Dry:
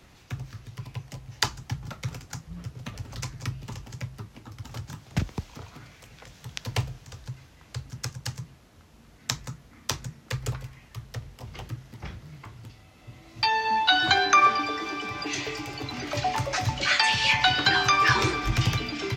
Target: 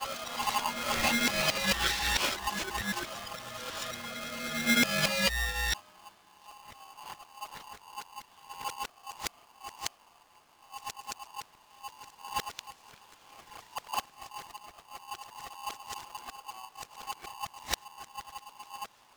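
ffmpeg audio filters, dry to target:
-af "areverse,aeval=exprs='val(0)*sgn(sin(2*PI*940*n/s))':c=same,volume=-7dB"

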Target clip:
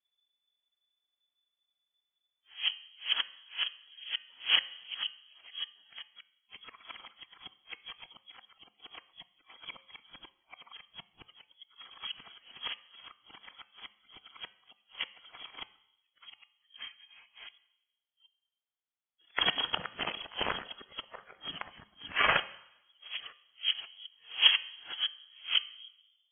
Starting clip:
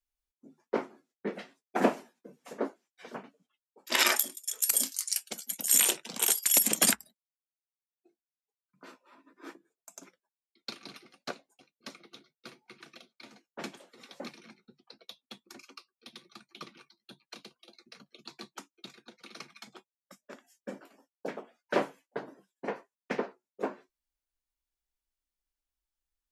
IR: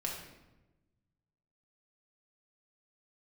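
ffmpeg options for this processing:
-filter_complex "[0:a]areverse,lowshelf=f=150:g=8.5,bandreject=f=329.1:t=h:w=4,bandreject=f=658.2:t=h:w=4,bandreject=f=987.3:t=h:w=4,bandreject=f=1.3164k:t=h:w=4,bandreject=f=1.6455k:t=h:w=4,bandreject=f=1.9746k:t=h:w=4,bandreject=f=2.3037k:t=h:w=4,bandreject=f=2.6328k:t=h:w=4,bandreject=f=2.9619k:t=h:w=4,bandreject=f=3.291k:t=h:w=4,bandreject=f=3.6201k:t=h:w=4,bandreject=f=3.9492k:t=h:w=4,bandreject=f=4.2783k:t=h:w=4,bandreject=f=4.6074k:t=h:w=4,bandreject=f=4.9365k:t=h:w=4,bandreject=f=5.2656k:t=h:w=4,bandreject=f=5.5947k:t=h:w=4,bandreject=f=5.9238k:t=h:w=4,bandreject=f=6.2529k:t=h:w=4,bandreject=f=6.582k:t=h:w=4,bandreject=f=6.9111k:t=h:w=4,bandreject=f=7.2402k:t=h:w=4,bandreject=f=7.5693k:t=h:w=4,bandreject=f=7.8984k:t=h:w=4,bandreject=f=8.2275k:t=h:w=4,bandreject=f=8.5566k:t=h:w=4,bandreject=f=8.8857k:t=h:w=4,bandreject=f=9.2148k:t=h:w=4,bandreject=f=9.5439k:t=h:w=4,bandreject=f=9.873k:t=h:w=4,bandreject=f=10.2021k:t=h:w=4,bandreject=f=10.5312k:t=h:w=4,bandreject=f=10.8603k:t=h:w=4,bandreject=f=11.1894k:t=h:w=4,bandreject=f=11.5185k:t=h:w=4,asplit=2[a][b];[1:a]atrim=start_sample=2205,lowshelf=f=180:g=-12[c];[b][c]afir=irnorm=-1:irlink=0,volume=-15dB[d];[a][d]amix=inputs=2:normalize=0,lowpass=f=3k:t=q:w=0.5098,lowpass=f=3k:t=q:w=0.6013,lowpass=f=3k:t=q:w=0.9,lowpass=f=3k:t=q:w=2.563,afreqshift=-3500"

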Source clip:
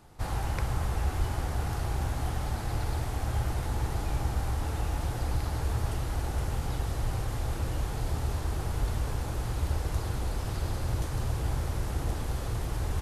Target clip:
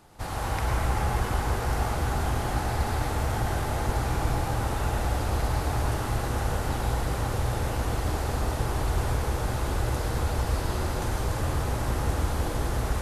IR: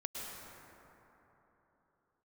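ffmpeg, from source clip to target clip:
-filter_complex "[0:a]lowshelf=f=150:g=-7[a];[1:a]atrim=start_sample=2205,asetrate=48510,aresample=44100[b];[a][b]afir=irnorm=-1:irlink=0,volume=7.5dB"

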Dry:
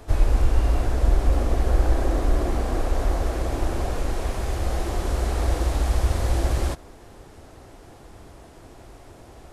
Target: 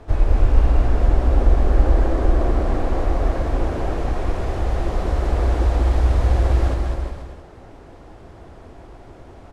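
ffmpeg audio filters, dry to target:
-filter_complex "[0:a]aemphasis=mode=reproduction:type=75fm,asplit=2[a][b];[b]aecho=0:1:200|360|488|590.4|672.3:0.631|0.398|0.251|0.158|0.1[c];[a][c]amix=inputs=2:normalize=0,volume=1dB"

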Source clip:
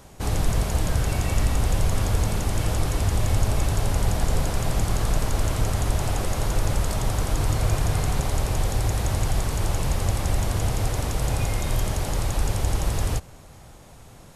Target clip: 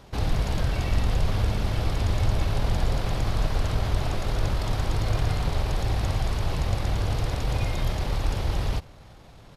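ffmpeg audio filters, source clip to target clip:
-af "highshelf=f=5.8k:t=q:w=1.5:g=-8.5,atempo=1.5,volume=-1.5dB"

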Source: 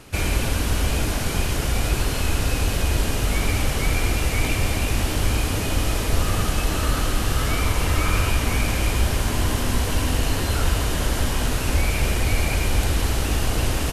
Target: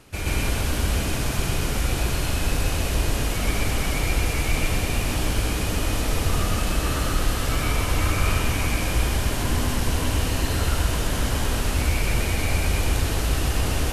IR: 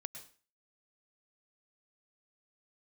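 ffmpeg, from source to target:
-filter_complex "[0:a]asplit=2[a][b];[1:a]atrim=start_sample=2205,adelay=127[c];[b][c]afir=irnorm=-1:irlink=0,volume=6dB[d];[a][d]amix=inputs=2:normalize=0,volume=-6dB"

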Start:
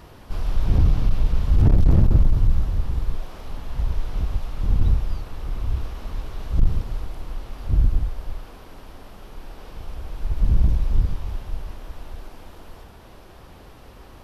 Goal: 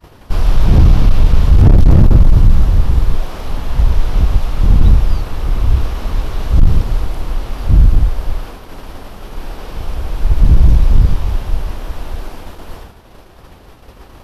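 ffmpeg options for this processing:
-filter_complex "[0:a]asettb=1/sr,asplit=3[a][b][c];[a]atrim=end=1.494[d];[b]atrim=start=1.49:end=2.27,asetpts=PTS-STARTPTS,afade=t=in:d=0.004:c=qsin,afade=t=out:st=0.776:d=0.004:c=qsin,aeval=exprs='if(lt(val(0),0),0.708*val(0),val(0))':c=same[e];[c]atrim=start=2.266[f];[d][e]acrossfade=d=0.004:c1=hsin:c2=qsin[g];[g][f]acrossfade=d=0.004:c1=qsin:c2=hsin,apsyclip=14dB,agate=range=-33dB:threshold=-23dB:ratio=3:detection=peak,volume=-1.5dB"

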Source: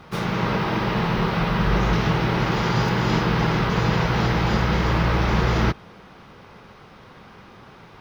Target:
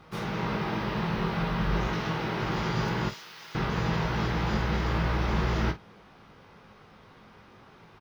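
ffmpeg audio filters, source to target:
-filter_complex "[0:a]asettb=1/sr,asplit=3[a][b][c];[a]atrim=end=1.874[d];[b]atrim=start=1.87:end=2.43,asetpts=PTS-STARTPTS,afade=t=in:d=0.004:c=qsin,afade=t=out:st=0.556:d=0.004:c=qsin,highpass=f=170:p=1[e];[c]atrim=start=2.426[f];[d][e]acrossfade=d=0.004:c1=hsin:c2=qsin[g];[g][f]acrossfade=d=0.004:c1=qsin:c2=hsin,asettb=1/sr,asplit=3[h][i][j];[h]atrim=end=3.094[k];[i]atrim=start=3.09:end=3.55,asetpts=PTS-STARTPTS,afade=t=in:d=0.004:c=qsin,afade=t=out:st=0.456:d=0.004:c=qsin,aderivative[l];[j]atrim=start=3.546[m];[k][l]acrossfade=d=0.004:c1=hsin:c2=qsin[n];[n][m]acrossfade=d=0.004:c1=qsin:c2=hsin,aecho=1:1:19|48:0.422|0.224,volume=-8.5dB"

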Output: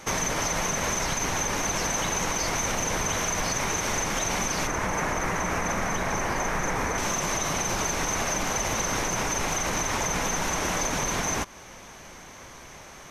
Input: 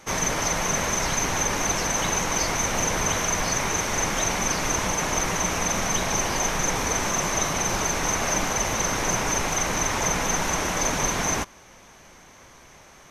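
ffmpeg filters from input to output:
-filter_complex "[0:a]asettb=1/sr,asplit=3[a][b][c];[a]atrim=end=4.674[d];[b]atrim=start=4.67:end=6.98,asetpts=PTS-STARTPTS,afade=t=in:d=0.004:c=qsin,afade=t=out:st=2.306:d=0.004:c=qsin,highshelf=f=2.5k:t=q:w=1.5:g=-6.5[e];[c]atrim=start=6.976[f];[d][e]acrossfade=d=0.004:c1=hsin:c2=qsin[g];[g][f]acrossfade=d=0.004:c1=qsin:c2=hsin,alimiter=limit=-17dB:level=0:latency=1:release=71,acompressor=threshold=-32dB:ratio=2,volume=4.5dB"

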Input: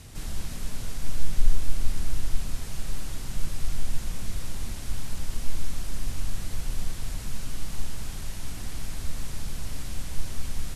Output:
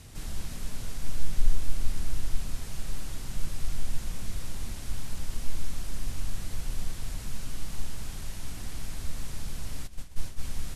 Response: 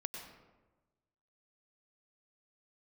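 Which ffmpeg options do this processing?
-filter_complex "[0:a]asplit=3[a][b][c];[a]afade=t=out:st=9.86:d=0.02[d];[b]agate=range=-33dB:threshold=-18dB:ratio=3:detection=peak,afade=t=in:st=9.86:d=0.02,afade=t=out:st=10.41:d=0.02[e];[c]afade=t=in:st=10.41:d=0.02[f];[d][e][f]amix=inputs=3:normalize=0,volume=-2.5dB"

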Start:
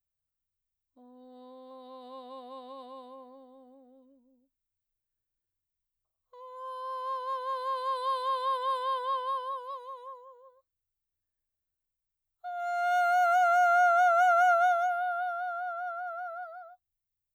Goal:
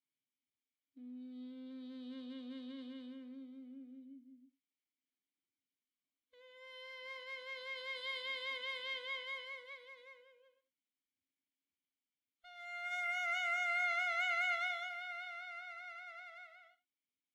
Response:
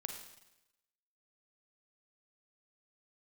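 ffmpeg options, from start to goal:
-filter_complex "[0:a]aeval=exprs='if(lt(val(0),0),0.447*val(0),val(0))':c=same,asplit=3[a][b][c];[a]bandpass=f=270:t=q:w=8,volume=0dB[d];[b]bandpass=f=2.29k:t=q:w=8,volume=-6dB[e];[c]bandpass=f=3.01k:t=q:w=8,volume=-9dB[f];[d][e][f]amix=inputs=3:normalize=0,aemphasis=mode=production:type=cd,asplit=2[g][h];[1:a]atrim=start_sample=2205,afade=t=out:st=0.15:d=0.01,atrim=end_sample=7056[i];[h][i]afir=irnorm=-1:irlink=0,volume=5dB[j];[g][j]amix=inputs=2:normalize=0,volume=5.5dB" -ar 48000 -c:a libvorbis -b:a 96k

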